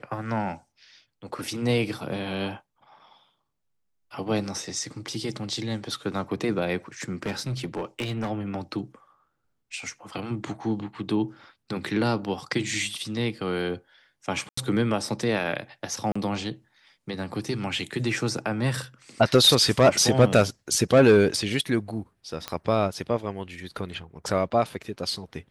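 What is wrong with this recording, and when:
7.02–8.31 clipped -25 dBFS
14.49–14.57 gap 84 ms
16.12–16.16 gap 35 ms
22.48 pop -14 dBFS

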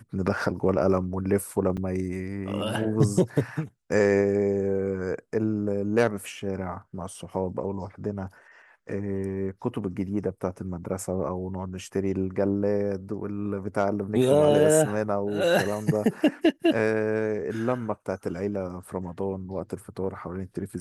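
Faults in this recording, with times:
1.77–1.78 gap 5.6 ms

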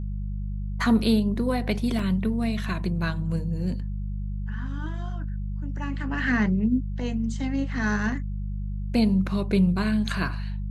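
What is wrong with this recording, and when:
hum 50 Hz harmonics 4 -30 dBFS
1.99 gap 3.4 ms

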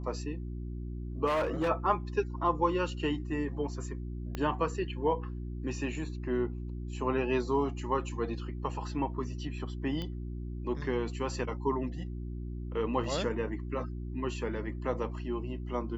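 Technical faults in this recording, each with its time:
hum 60 Hz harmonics 6 -38 dBFS
1.26–1.69 clipped -26 dBFS
4.35 pop -21 dBFS
10.02 pop -25 dBFS
13.04 gap 2.4 ms

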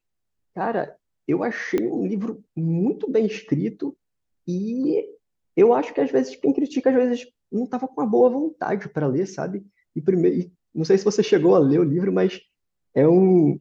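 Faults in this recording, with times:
1.78 pop -12 dBFS

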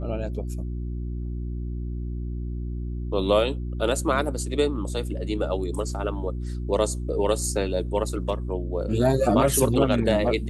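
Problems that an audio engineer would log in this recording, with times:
hum 60 Hz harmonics 6 -30 dBFS

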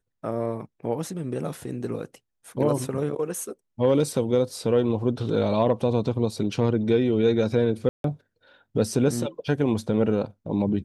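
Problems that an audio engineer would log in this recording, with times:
7.89–8.04 gap 0.152 s

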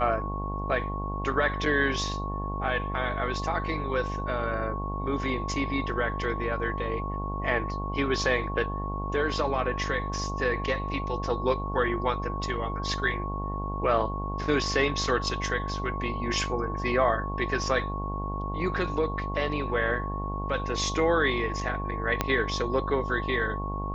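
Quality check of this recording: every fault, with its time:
buzz 50 Hz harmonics 21 -33 dBFS
tone 1100 Hz -34 dBFS
22.21 pop -9 dBFS

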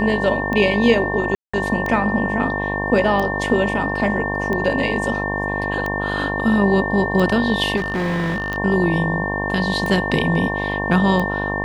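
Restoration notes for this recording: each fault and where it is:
buzz 50 Hz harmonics 22 -25 dBFS
tick 45 rpm -12 dBFS
tone 1800 Hz -24 dBFS
1.35–1.53 gap 0.185 s
7.76–8.58 clipped -18.5 dBFS

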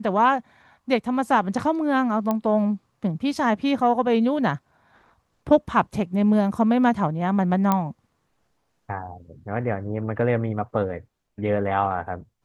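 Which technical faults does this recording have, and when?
2.31 pop -12 dBFS
7.72 pop -8 dBFS

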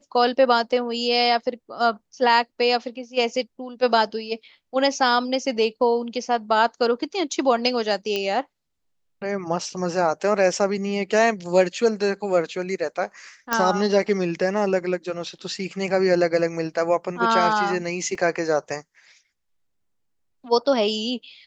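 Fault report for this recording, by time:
8.16 pop -12 dBFS
13.53 pop -6 dBFS
18.15 gap 2.5 ms

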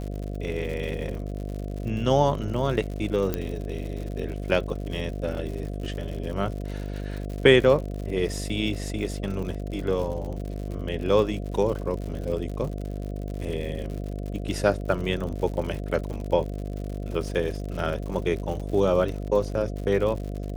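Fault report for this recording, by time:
buzz 50 Hz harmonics 14 -32 dBFS
crackle 96/s -33 dBFS
3.34 pop -12 dBFS
16.13 gap 4.5 ms

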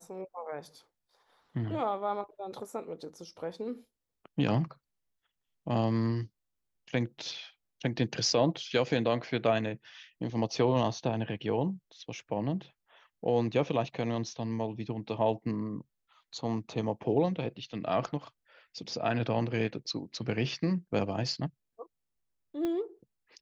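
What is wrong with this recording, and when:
22.65 pop -21 dBFS

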